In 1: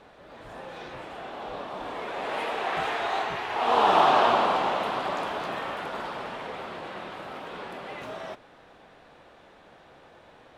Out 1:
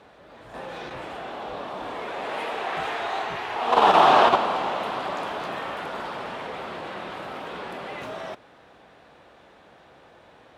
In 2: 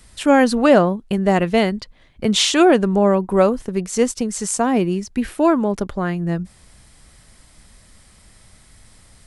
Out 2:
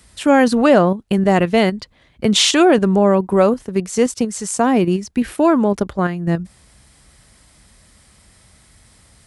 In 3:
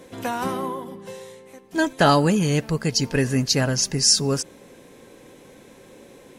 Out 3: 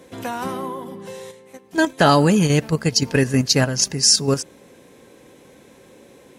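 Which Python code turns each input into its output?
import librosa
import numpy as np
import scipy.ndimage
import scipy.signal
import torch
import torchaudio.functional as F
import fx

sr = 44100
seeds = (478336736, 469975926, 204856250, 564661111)

p1 = scipy.signal.sosfilt(scipy.signal.butter(4, 41.0, 'highpass', fs=sr, output='sos'), x)
p2 = fx.level_steps(p1, sr, step_db=21)
p3 = p1 + (p2 * 10.0 ** (3.0 / 20.0))
y = p3 * 10.0 ** (-2.5 / 20.0)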